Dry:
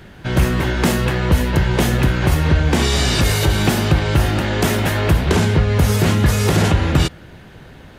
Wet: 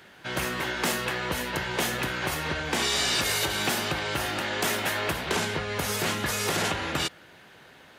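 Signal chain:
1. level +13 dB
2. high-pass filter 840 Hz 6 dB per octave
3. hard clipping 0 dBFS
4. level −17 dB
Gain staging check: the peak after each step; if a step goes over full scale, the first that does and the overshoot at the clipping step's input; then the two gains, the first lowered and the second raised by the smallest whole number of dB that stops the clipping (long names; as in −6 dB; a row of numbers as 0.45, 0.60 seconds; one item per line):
+9.5, +7.5, 0.0, −17.0 dBFS
step 1, 7.5 dB
step 1 +5 dB, step 4 −9 dB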